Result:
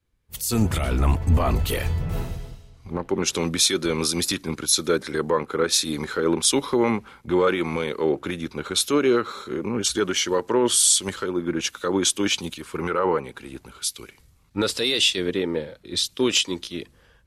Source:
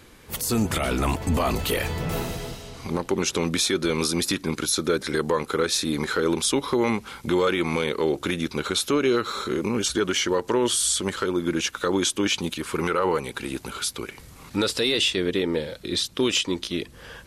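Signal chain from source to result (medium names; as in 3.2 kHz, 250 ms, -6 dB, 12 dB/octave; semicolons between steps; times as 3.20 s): three bands expanded up and down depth 100%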